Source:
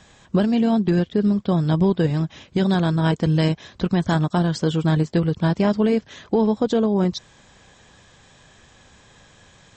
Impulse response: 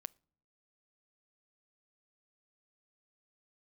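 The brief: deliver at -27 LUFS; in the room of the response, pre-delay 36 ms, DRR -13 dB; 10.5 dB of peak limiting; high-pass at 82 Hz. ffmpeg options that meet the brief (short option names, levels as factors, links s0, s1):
-filter_complex "[0:a]highpass=82,alimiter=limit=0.126:level=0:latency=1,asplit=2[s0][s1];[1:a]atrim=start_sample=2205,adelay=36[s2];[s1][s2]afir=irnorm=-1:irlink=0,volume=7.94[s3];[s0][s3]amix=inputs=2:normalize=0,volume=0.211"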